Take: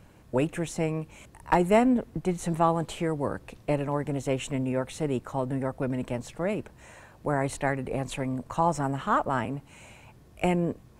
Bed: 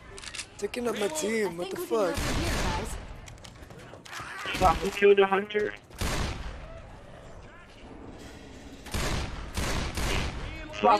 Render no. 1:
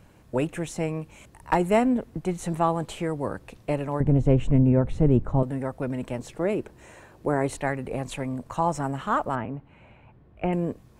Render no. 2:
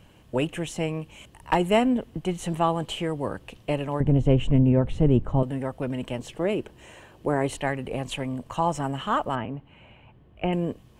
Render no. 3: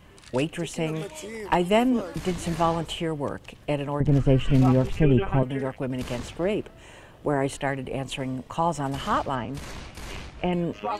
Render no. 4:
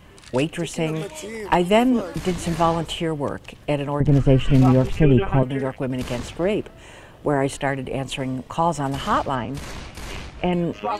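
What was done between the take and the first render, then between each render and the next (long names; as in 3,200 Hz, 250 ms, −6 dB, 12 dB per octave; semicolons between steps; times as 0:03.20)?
0:04.00–0:05.43: spectral tilt −4.5 dB per octave; 0:06.19–0:07.57: parametric band 370 Hz +7.5 dB; 0:09.35–0:10.53: high-frequency loss of the air 490 metres
parametric band 3,000 Hz +11.5 dB 0.3 octaves; notch filter 1,400 Hz, Q 20
mix in bed −8.5 dB
level +4 dB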